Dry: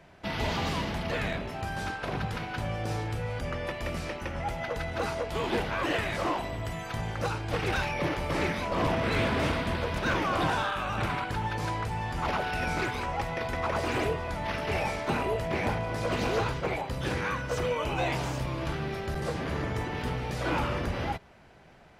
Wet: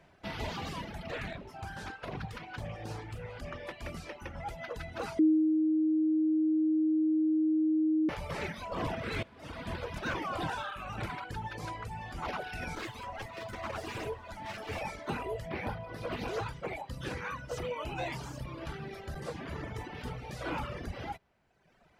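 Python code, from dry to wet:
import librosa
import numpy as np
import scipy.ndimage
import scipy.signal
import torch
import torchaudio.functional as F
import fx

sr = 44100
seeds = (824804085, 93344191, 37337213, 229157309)

y = fx.doppler_dist(x, sr, depth_ms=0.28, at=(1.07, 3.88))
y = fx.lower_of_two(y, sr, delay_ms=9.2, at=(12.75, 14.81))
y = fx.peak_eq(y, sr, hz=7200.0, db=-11.5, octaves=0.67, at=(15.49, 16.28))
y = fx.edit(y, sr, fx.bleep(start_s=5.19, length_s=2.9, hz=313.0, db=-13.5),
    fx.fade_in_from(start_s=9.23, length_s=0.5, curve='qua', floor_db=-12.5), tone=tone)
y = fx.dereverb_blind(y, sr, rt60_s=1.3)
y = y * 10.0 ** (-5.5 / 20.0)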